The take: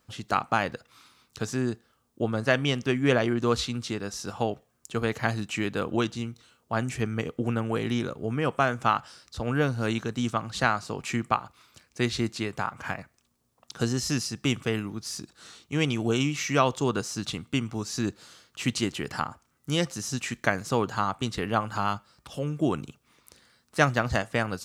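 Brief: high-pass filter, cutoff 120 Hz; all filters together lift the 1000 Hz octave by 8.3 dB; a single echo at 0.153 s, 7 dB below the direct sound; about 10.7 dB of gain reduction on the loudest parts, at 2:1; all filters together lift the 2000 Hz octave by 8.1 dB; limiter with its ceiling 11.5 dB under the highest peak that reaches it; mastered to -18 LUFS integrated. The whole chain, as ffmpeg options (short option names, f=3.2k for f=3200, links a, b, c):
-af "highpass=120,equalizer=f=1k:t=o:g=8.5,equalizer=f=2k:t=o:g=7.5,acompressor=threshold=-30dB:ratio=2,alimiter=limit=-18dB:level=0:latency=1,aecho=1:1:153:0.447,volume=14.5dB"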